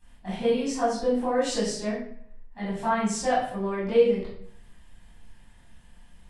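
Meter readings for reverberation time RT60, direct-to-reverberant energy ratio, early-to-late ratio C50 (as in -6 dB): 0.60 s, -12.5 dB, 1.5 dB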